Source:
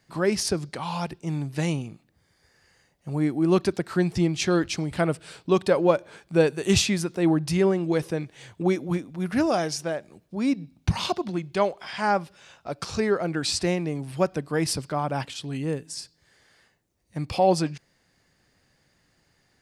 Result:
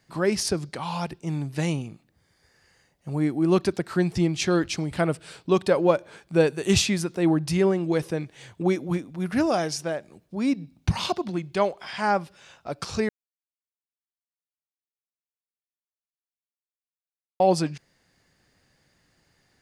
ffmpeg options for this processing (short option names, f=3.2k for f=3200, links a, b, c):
-filter_complex "[0:a]asplit=3[a][b][c];[a]atrim=end=13.09,asetpts=PTS-STARTPTS,afade=t=out:st=13.086:d=0.004:c=hsin[d];[b]atrim=start=13.09:end=17.4,asetpts=PTS-STARTPTS,volume=0[e];[c]atrim=start=17.4,asetpts=PTS-STARTPTS,afade=t=in:d=0.004:c=hsin[f];[d][e][f]concat=n=3:v=0:a=1"